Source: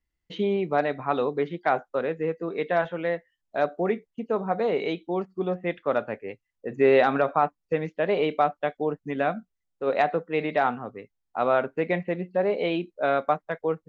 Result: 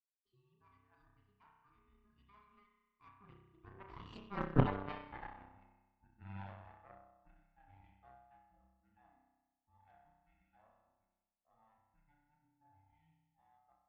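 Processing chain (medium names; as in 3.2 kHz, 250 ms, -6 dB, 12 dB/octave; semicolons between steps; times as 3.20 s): every band turned upside down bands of 500 Hz; Doppler pass-by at 4.54 s, 53 m/s, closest 2.9 m; spring tank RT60 1.2 s, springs 31 ms, chirp 70 ms, DRR -1 dB; Chebyshev shaper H 3 -10 dB, 4 -12 dB, 5 -30 dB, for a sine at -18 dBFS; trim +3.5 dB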